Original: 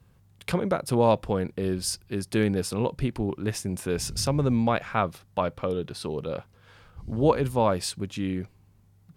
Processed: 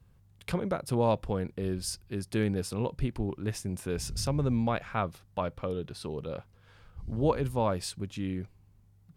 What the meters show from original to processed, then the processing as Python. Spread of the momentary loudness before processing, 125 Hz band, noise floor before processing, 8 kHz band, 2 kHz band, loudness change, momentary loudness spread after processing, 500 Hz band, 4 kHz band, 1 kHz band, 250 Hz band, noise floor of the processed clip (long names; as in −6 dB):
10 LU, −3.0 dB, −59 dBFS, −6.0 dB, −6.0 dB, −5.0 dB, 10 LU, −5.5 dB, −6.0 dB, −6.0 dB, −5.0 dB, −61 dBFS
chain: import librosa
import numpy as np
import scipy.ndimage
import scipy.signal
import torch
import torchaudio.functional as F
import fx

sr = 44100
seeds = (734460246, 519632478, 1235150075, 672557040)

y = fx.low_shelf(x, sr, hz=79.0, db=10.0)
y = y * librosa.db_to_amplitude(-6.0)